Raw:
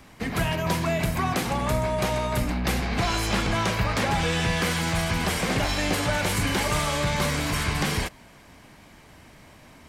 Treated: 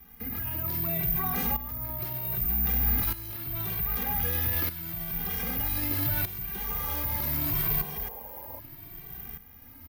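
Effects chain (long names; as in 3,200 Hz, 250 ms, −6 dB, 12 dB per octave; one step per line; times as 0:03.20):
low-pass filter 7,300 Hz
low shelf with overshoot 290 Hz +7 dB, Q 1.5
comb filter 2.5 ms, depth 52%
brickwall limiter −22.5 dBFS, peak gain reduction 15.5 dB
shaped tremolo saw up 0.64 Hz, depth 75%
sound drawn into the spectrogram noise, 0:06.69–0:08.60, 340–1,100 Hz −46 dBFS
bad sample-rate conversion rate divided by 3×, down filtered, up zero stuff
barber-pole flanger 2.1 ms +0.75 Hz
level +1.5 dB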